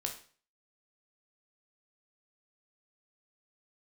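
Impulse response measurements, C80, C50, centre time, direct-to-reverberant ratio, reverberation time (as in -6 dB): 13.5 dB, 9.0 dB, 17 ms, 2.0 dB, 0.45 s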